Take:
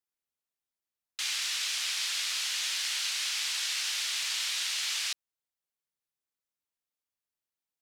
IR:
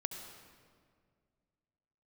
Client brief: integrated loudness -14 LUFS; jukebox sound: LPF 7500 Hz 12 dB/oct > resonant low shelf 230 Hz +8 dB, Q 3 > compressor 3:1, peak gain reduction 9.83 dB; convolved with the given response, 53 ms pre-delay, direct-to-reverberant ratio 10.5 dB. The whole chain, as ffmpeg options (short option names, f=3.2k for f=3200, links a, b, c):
-filter_complex "[0:a]asplit=2[a][b];[1:a]atrim=start_sample=2205,adelay=53[c];[b][c]afir=irnorm=-1:irlink=0,volume=-10.5dB[d];[a][d]amix=inputs=2:normalize=0,lowpass=7.5k,lowshelf=f=230:t=q:w=3:g=8,acompressor=threshold=-42dB:ratio=3,volume=25dB"